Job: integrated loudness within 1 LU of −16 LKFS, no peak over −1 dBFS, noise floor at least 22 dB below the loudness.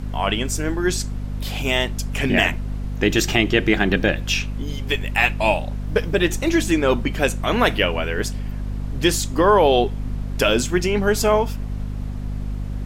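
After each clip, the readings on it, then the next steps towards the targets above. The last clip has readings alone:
mains hum 50 Hz; hum harmonics up to 250 Hz; level of the hum −24 dBFS; background noise floor −28 dBFS; target noise floor −43 dBFS; integrated loudness −21.0 LKFS; sample peak −1.5 dBFS; target loudness −16.0 LKFS
→ mains-hum notches 50/100/150/200/250 Hz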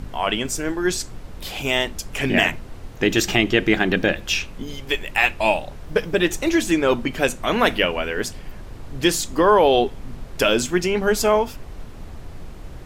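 mains hum none found; background noise floor −38 dBFS; target noise floor −43 dBFS
→ noise reduction from a noise print 6 dB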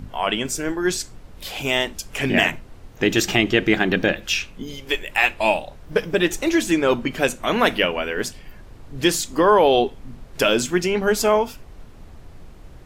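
background noise floor −43 dBFS; integrated loudness −20.5 LKFS; sample peak −1.0 dBFS; target loudness −16.0 LKFS
→ level +4.5 dB
brickwall limiter −1 dBFS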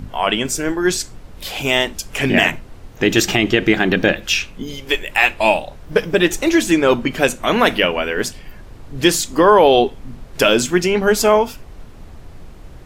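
integrated loudness −16.5 LKFS; sample peak −1.0 dBFS; background noise floor −39 dBFS

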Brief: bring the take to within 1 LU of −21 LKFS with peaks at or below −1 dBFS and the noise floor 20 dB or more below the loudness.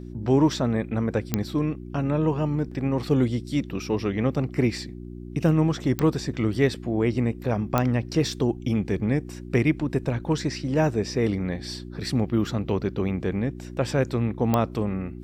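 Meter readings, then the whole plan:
number of clicks 4; mains hum 60 Hz; hum harmonics up to 360 Hz; level of the hum −36 dBFS; integrated loudness −25.5 LKFS; sample peak −8.0 dBFS; target loudness −21.0 LKFS
→ click removal
hum removal 60 Hz, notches 6
level +4.5 dB

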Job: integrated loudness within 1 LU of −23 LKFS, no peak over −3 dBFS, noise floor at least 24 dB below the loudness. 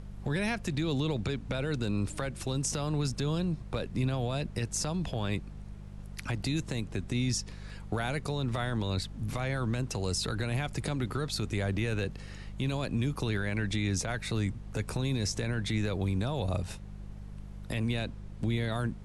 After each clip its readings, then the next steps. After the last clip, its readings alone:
mains hum 50 Hz; hum harmonics up to 200 Hz; level of the hum −41 dBFS; background noise floor −45 dBFS; target noise floor −57 dBFS; integrated loudness −32.5 LKFS; sample peak −19.5 dBFS; target loudness −23.0 LKFS
→ hum removal 50 Hz, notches 4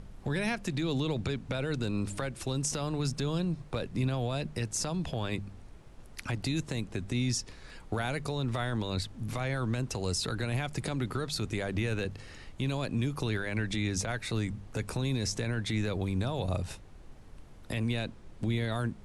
mains hum none found; background noise floor −50 dBFS; target noise floor −57 dBFS
→ noise reduction from a noise print 7 dB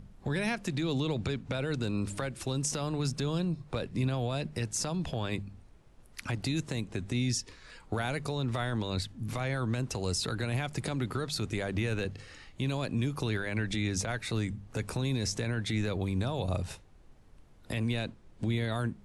background noise floor −56 dBFS; target noise floor −57 dBFS
→ noise reduction from a noise print 6 dB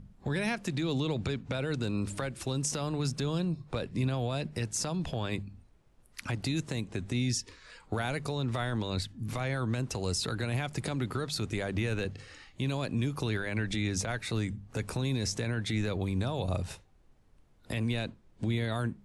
background noise floor −61 dBFS; integrated loudness −33.0 LKFS; sample peak −20.0 dBFS; target loudness −23.0 LKFS
→ level +10 dB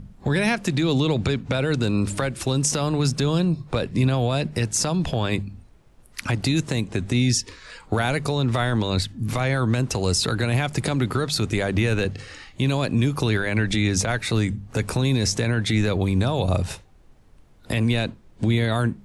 integrated loudness −23.0 LKFS; sample peak −10.0 dBFS; background noise floor −51 dBFS

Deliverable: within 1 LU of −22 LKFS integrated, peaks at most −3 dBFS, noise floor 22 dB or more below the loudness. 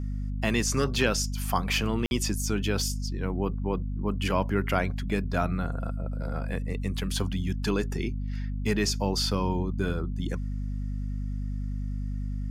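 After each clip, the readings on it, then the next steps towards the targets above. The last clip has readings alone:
number of dropouts 1; longest dropout 51 ms; mains hum 50 Hz; hum harmonics up to 250 Hz; level of the hum −29 dBFS; integrated loudness −29.5 LKFS; sample peak −10.0 dBFS; target loudness −22.0 LKFS
→ repair the gap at 0:02.06, 51 ms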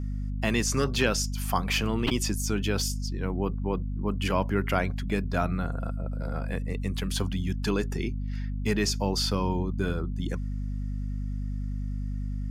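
number of dropouts 0; mains hum 50 Hz; hum harmonics up to 250 Hz; level of the hum −29 dBFS
→ mains-hum notches 50/100/150/200/250 Hz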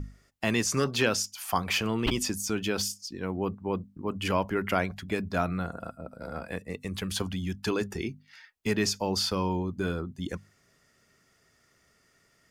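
mains hum none found; integrated loudness −30.5 LKFS; sample peak −10.5 dBFS; target loudness −22.0 LKFS
→ level +8.5 dB
brickwall limiter −3 dBFS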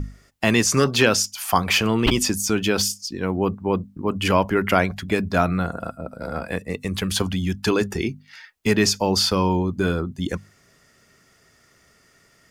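integrated loudness −22.0 LKFS; sample peak −3.0 dBFS; background noise floor −58 dBFS

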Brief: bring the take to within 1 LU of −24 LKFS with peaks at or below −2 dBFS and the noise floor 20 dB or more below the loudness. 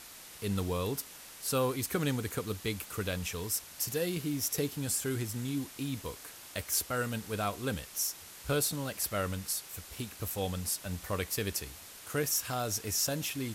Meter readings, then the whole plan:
background noise floor −50 dBFS; target noise floor −54 dBFS; integrated loudness −33.5 LKFS; sample peak −17.0 dBFS; target loudness −24.0 LKFS
→ noise reduction from a noise print 6 dB
level +9.5 dB

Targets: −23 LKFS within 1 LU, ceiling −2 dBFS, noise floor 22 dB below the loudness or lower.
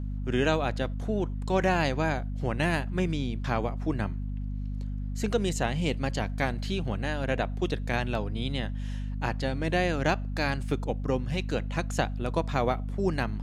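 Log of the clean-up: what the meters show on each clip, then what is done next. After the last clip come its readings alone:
mains hum 50 Hz; hum harmonics up to 250 Hz; level of the hum −30 dBFS; integrated loudness −29.5 LKFS; sample peak −10.5 dBFS; target loudness −23.0 LKFS
→ hum removal 50 Hz, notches 5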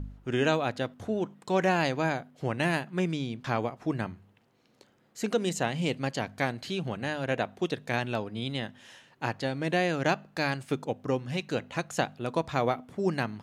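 mains hum none found; integrated loudness −30.5 LKFS; sample peak −10.5 dBFS; target loudness −23.0 LKFS
→ level +7.5 dB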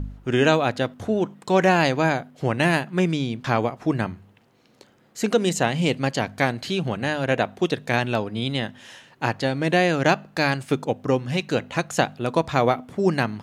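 integrated loudness −23.0 LKFS; sample peak −3.0 dBFS; background noise floor −58 dBFS

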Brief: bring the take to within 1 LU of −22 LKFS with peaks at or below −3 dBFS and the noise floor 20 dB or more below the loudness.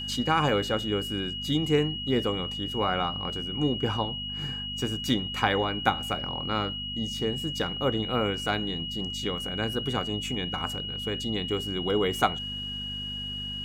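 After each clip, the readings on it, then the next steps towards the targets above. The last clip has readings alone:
mains hum 50 Hz; hum harmonics up to 250 Hz; level of the hum −38 dBFS; interfering tone 2,900 Hz; level of the tone −33 dBFS; integrated loudness −28.5 LKFS; sample peak −6.0 dBFS; target loudness −22.0 LKFS
→ hum removal 50 Hz, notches 5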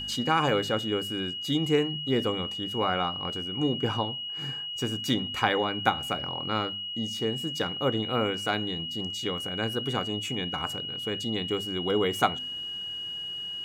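mains hum none found; interfering tone 2,900 Hz; level of the tone −33 dBFS
→ notch filter 2,900 Hz, Q 30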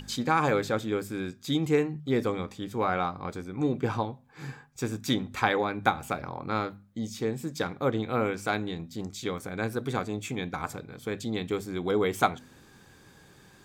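interfering tone none found; integrated loudness −30.0 LKFS; sample peak −6.0 dBFS; target loudness −22.0 LKFS
→ level +8 dB
brickwall limiter −3 dBFS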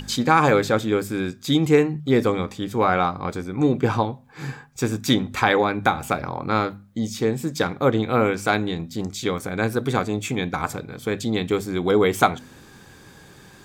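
integrated loudness −22.5 LKFS; sample peak −3.0 dBFS; background noise floor −48 dBFS

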